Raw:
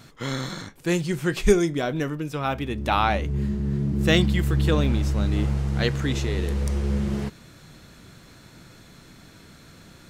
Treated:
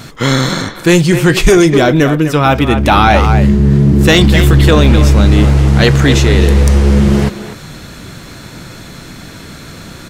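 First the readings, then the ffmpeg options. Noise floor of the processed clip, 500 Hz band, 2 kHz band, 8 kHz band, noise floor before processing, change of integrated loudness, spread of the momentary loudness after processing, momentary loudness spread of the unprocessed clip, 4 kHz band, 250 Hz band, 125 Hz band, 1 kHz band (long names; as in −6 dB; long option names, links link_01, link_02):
−32 dBFS, +14.0 dB, +15.0 dB, +16.0 dB, −50 dBFS, +15.0 dB, 6 LU, 9 LU, +15.0 dB, +15.0 dB, +15.5 dB, +14.5 dB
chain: -filter_complex "[0:a]asplit=2[link_01][link_02];[link_02]adelay=250,highpass=300,lowpass=3400,asoftclip=type=hard:threshold=-14dB,volume=-10dB[link_03];[link_01][link_03]amix=inputs=2:normalize=0,apsyclip=19.5dB,volume=-2dB"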